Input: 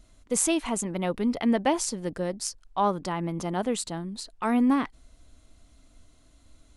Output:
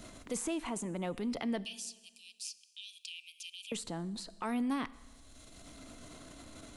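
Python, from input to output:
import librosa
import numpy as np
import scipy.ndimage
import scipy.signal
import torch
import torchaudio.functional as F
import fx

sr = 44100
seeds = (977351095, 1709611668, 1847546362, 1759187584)

y = fx.cheby1_highpass(x, sr, hz=2400.0, order=10, at=(1.64, 3.72))
y = fx.transient(y, sr, attack_db=-4, sustain_db=4)
y = fx.rev_schroeder(y, sr, rt60_s=0.89, comb_ms=26, drr_db=18.5)
y = fx.band_squash(y, sr, depth_pct=70)
y = y * librosa.db_to_amplitude(-8.0)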